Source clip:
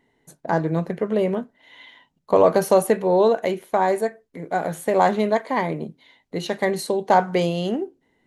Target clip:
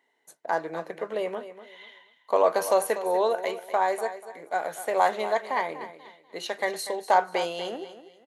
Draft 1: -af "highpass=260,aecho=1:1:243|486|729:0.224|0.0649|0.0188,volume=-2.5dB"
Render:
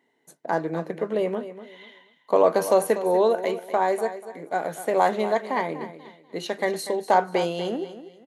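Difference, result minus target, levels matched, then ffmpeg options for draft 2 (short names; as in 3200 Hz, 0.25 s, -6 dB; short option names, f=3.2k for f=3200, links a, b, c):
250 Hz band +6.5 dB
-af "highpass=580,aecho=1:1:243|486|729:0.224|0.0649|0.0188,volume=-2.5dB"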